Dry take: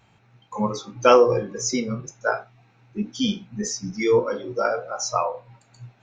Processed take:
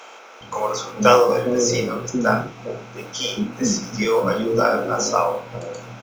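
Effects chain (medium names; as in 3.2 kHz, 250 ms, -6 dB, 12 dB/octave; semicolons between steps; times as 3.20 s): spectral levelling over time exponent 0.6; modulation noise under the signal 33 dB; bands offset in time highs, lows 410 ms, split 410 Hz; trim +1.5 dB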